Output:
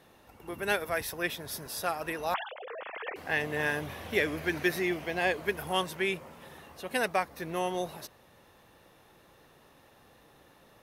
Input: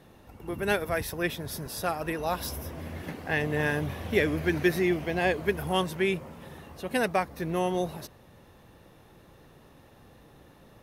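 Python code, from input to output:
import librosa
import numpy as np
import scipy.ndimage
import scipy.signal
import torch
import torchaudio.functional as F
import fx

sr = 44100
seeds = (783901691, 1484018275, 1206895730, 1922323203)

y = fx.sine_speech(x, sr, at=(2.34, 3.16))
y = fx.low_shelf(y, sr, hz=350.0, db=-11.0)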